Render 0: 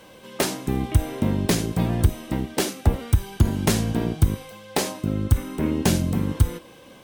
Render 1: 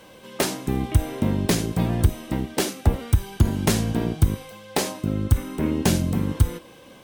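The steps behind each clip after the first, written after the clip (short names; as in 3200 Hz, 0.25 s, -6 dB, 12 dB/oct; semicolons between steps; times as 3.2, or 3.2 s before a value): nothing audible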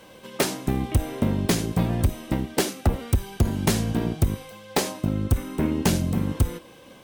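transient shaper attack +6 dB, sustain 0 dB; soft clip -12 dBFS, distortion -7 dB; gain -1 dB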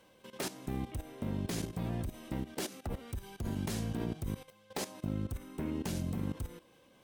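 level quantiser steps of 14 dB; gain -7.5 dB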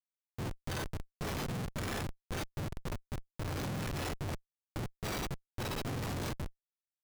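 spectrum mirrored in octaves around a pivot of 1100 Hz; Schmitt trigger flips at -37 dBFS; gain +4 dB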